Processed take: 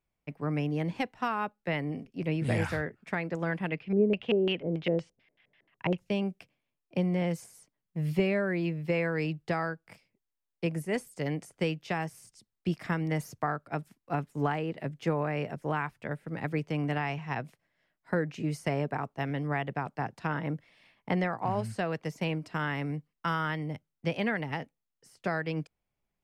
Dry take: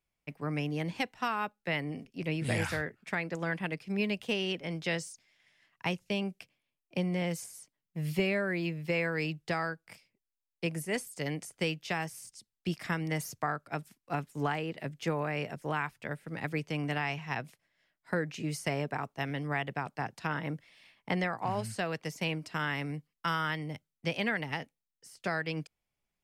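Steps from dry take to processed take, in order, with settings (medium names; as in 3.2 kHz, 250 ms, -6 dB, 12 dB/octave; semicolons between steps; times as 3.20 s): treble shelf 2.1 kHz -10.5 dB; 3.68–5.97 s: LFO low-pass square 1.9 Hz -> 8.9 Hz 450–2900 Hz; trim +3.5 dB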